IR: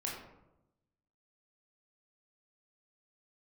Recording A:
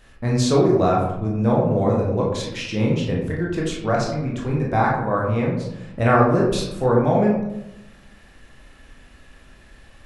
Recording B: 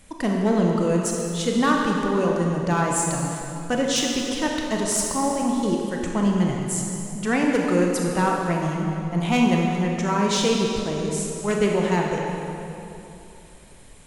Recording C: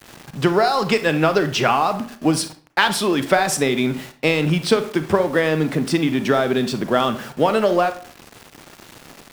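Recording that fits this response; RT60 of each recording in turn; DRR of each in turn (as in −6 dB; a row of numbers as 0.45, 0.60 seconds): A; 0.90, 3.0, 0.45 seconds; −3.5, −1.0, 9.5 decibels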